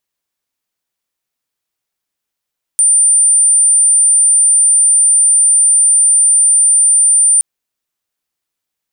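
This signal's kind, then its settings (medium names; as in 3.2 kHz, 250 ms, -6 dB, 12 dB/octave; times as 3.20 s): tone sine 9.16 kHz -6 dBFS 4.62 s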